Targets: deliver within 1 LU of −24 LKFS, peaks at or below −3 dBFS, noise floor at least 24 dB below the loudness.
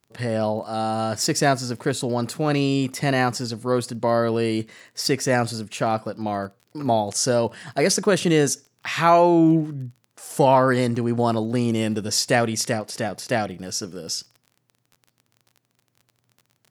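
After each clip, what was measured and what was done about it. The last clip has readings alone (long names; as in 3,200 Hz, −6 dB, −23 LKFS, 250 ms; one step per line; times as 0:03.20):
crackle rate 30 per second; integrated loudness −22.0 LKFS; sample peak −3.5 dBFS; target loudness −24.0 LKFS
→ click removal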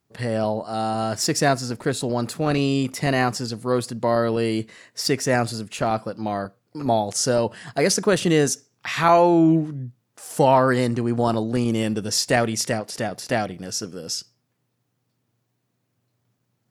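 crackle rate 0 per second; integrated loudness −22.0 LKFS; sample peak −3.5 dBFS; target loudness −24.0 LKFS
→ level −2 dB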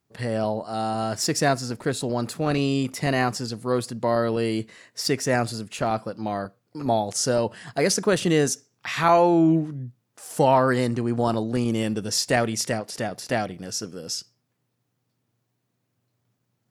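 integrated loudness −24.0 LKFS; sample peak −5.5 dBFS; background noise floor −76 dBFS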